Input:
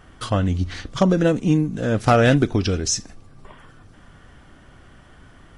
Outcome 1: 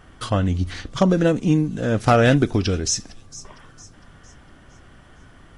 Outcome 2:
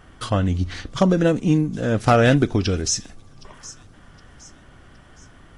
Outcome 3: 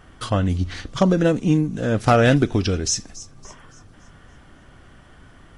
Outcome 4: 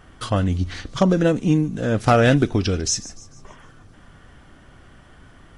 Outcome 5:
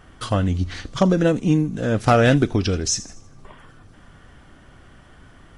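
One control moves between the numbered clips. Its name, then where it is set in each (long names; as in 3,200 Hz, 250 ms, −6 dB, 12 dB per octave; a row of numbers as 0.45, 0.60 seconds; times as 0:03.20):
delay with a high-pass on its return, delay time: 457, 766, 282, 148, 81 milliseconds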